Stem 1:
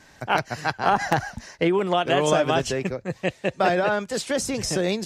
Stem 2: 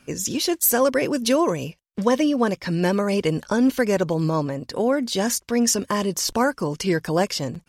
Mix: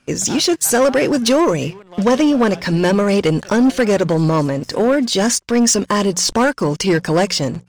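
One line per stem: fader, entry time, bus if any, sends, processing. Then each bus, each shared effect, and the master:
-17.0 dB, 0.00 s, no send, sample leveller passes 1; auto duck -8 dB, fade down 1.25 s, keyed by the second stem
+1.0 dB, 0.00 s, no send, LPF 9500 Hz 24 dB/oct; notches 60/120/180 Hz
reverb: off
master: sample leveller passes 2

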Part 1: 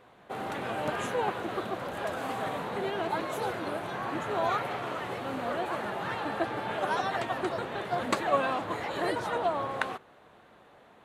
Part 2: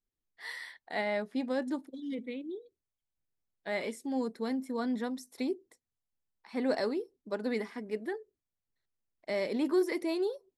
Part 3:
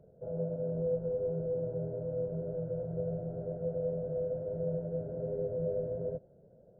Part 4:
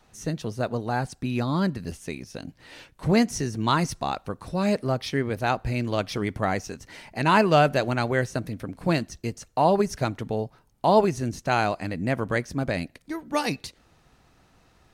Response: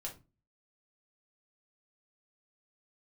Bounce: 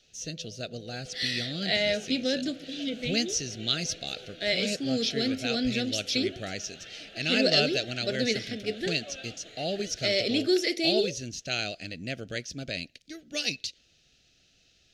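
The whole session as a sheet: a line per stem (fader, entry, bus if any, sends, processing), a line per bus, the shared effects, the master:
-18.0 dB, 0.75 s, send -8.5 dB, dry
+1.5 dB, 0.75 s, send -6.5 dB, dry
-18.5 dB, 0.00 s, no send, dry
-10.0 dB, 0.00 s, no send, dry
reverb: on, RT60 0.30 s, pre-delay 4 ms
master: Chebyshev band-stop 650–1500 Hz, order 2; band shelf 4200 Hz +16 dB

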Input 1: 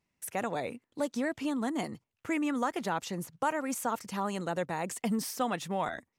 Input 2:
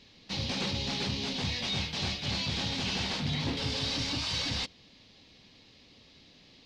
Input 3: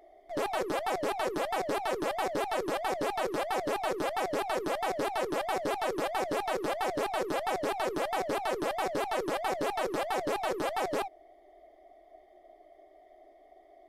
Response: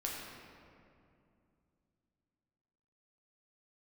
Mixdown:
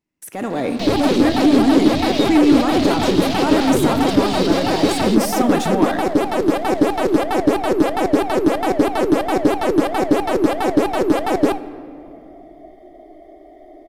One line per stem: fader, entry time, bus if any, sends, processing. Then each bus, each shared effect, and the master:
-4.5 dB, 0.00 s, bus A, send -4.5 dB, dry
-3.5 dB, 0.50 s, bus A, no send, high shelf 7900 Hz -9.5 dB
-3.0 dB, 0.50 s, no bus, send -13.5 dB, low shelf 220 Hz +11 dB
bus A: 0.0 dB, sample leveller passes 3; limiter -30.5 dBFS, peak gain reduction 10.5 dB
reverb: on, RT60 2.5 s, pre-delay 6 ms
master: bell 290 Hz +11 dB 0.79 oct; AGC gain up to 11.5 dB

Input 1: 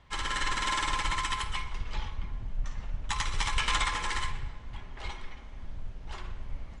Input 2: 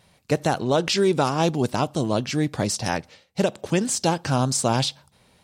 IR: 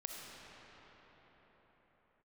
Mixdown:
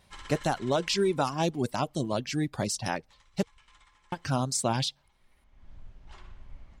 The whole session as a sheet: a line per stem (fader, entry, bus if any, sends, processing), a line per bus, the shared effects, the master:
-9.0 dB, 0.00 s, no send, auto duck -23 dB, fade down 1.40 s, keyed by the second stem
-5.0 dB, 0.00 s, muted 3.43–4.12, no send, reverb removal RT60 0.98 s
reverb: off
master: notch 470 Hz, Q 12

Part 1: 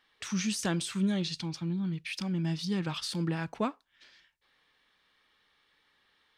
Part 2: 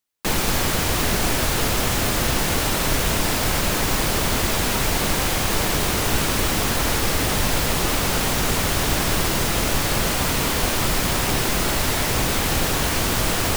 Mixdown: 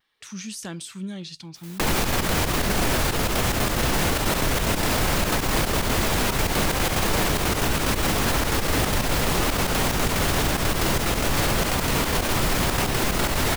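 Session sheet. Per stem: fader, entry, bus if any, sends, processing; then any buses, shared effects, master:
-4.5 dB, 0.00 s, no send, vibrato 0.75 Hz 22 cents
+2.5 dB, 1.55 s, no send, LPF 2900 Hz 6 dB/oct; step gate ".xxxxx.x.xx.x" 183 bpm -12 dB; fast leveller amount 50%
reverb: off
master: high shelf 7800 Hz +10 dB; limiter -12.5 dBFS, peak gain reduction 8.5 dB

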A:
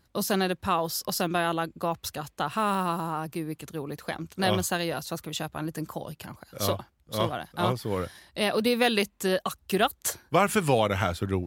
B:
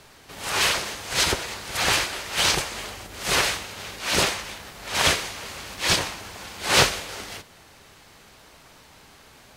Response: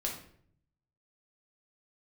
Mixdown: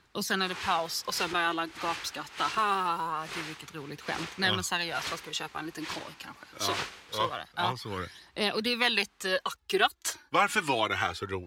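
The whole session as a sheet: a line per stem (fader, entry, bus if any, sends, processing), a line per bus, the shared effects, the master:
+1.0 dB, 0.00 s, no send, three-band isolator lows -12 dB, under 400 Hz, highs -13 dB, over 6900 Hz; phaser 0.24 Hz, delay 3.7 ms, feedback 52%
-13.0 dB, 0.00 s, no send, LPF 2600 Hz 6 dB/oct; low shelf 200 Hz -11.5 dB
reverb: off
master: bell 600 Hz -10 dB 0.66 oct

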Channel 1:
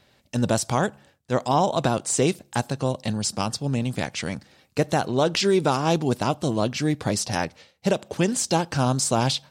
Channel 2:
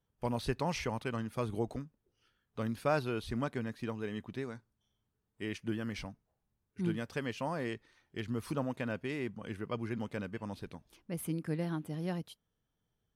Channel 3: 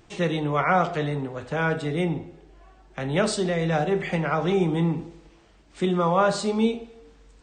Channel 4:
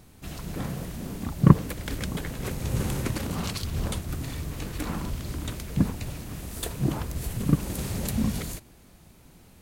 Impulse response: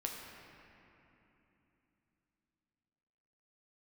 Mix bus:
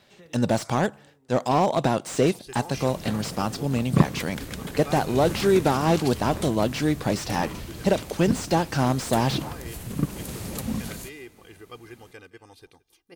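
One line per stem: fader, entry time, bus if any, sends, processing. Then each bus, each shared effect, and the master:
+1.5 dB, 0.00 s, no send, no echo send, slew limiter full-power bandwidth 110 Hz
-19.0 dB, 2.00 s, no send, echo send -21.5 dB, high shelf 2800 Hz +10.5 dB; comb 2.5 ms, depth 81%; AGC gain up to 11 dB
-15.0 dB, 0.00 s, no send, no echo send, compressor, threshold -29 dBFS, peak gain reduction 12.5 dB; auto duck -17 dB, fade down 1.50 s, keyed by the first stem
-1.5 dB, 2.50 s, no send, echo send -19 dB, dry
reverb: off
echo: echo 0.169 s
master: low shelf 99 Hz -8 dB

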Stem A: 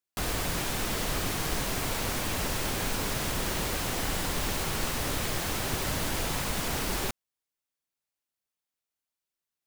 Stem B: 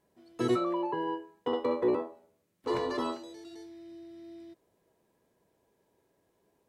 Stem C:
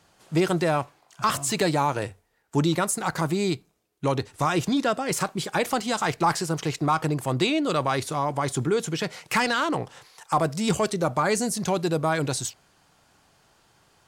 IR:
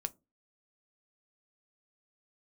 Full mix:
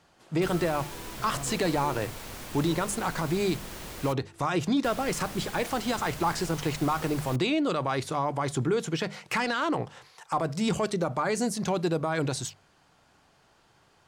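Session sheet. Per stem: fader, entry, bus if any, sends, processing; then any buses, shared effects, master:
-10.0 dB, 0.25 s, muted 4.13–4.84, no send, dry
-13.5 dB, 0.00 s, no send, dry
-0.5 dB, 0.00 s, no send, high shelf 6700 Hz -9.5 dB; notches 50/100/150/200 Hz; limiter -17.5 dBFS, peak gain reduction 6 dB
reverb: off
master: dry

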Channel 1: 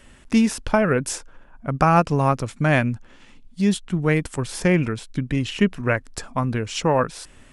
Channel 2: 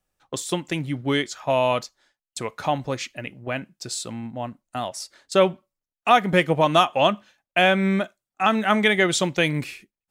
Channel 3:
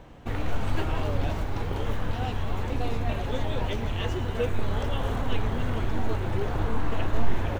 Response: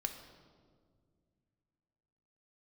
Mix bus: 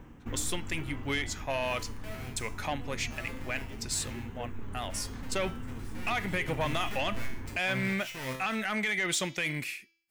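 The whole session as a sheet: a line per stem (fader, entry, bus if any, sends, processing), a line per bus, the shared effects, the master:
5.94 s -18.5 dB -> 6.34 s -10.5 dB, 1.30 s, bus A, no send, half-waves squared off; limiter -13 dBFS, peak gain reduction 9 dB; resonator 130 Hz, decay 0.54 s, harmonics all, mix 90%
-10.0 dB, 0.00 s, bus A, no send, one diode to ground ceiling -5.5 dBFS; high shelf 6000 Hz +9 dB; de-hum 331.9 Hz, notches 21
-1.0 dB, 0.00 s, no bus, no send, fifteen-band EQ 250 Hz +6 dB, 630 Hz -11 dB, 4000 Hz -12 dB, 10000 Hz -11 dB; auto duck -12 dB, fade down 0.60 s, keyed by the second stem
bus A: 0.0 dB, bell 2100 Hz +10.5 dB 1 oct; limiter -20 dBFS, peak gain reduction 11 dB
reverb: off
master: high shelf 5300 Hz +5 dB; soft clip -21 dBFS, distortion -20 dB

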